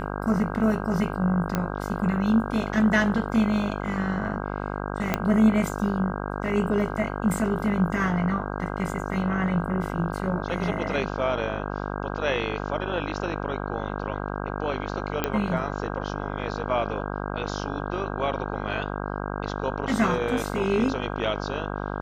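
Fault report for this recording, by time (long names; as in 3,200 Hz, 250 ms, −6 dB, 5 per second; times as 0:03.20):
mains buzz 50 Hz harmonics 32 −31 dBFS
0:01.55: click −11 dBFS
0:05.14: click −8 dBFS
0:15.24: click −9 dBFS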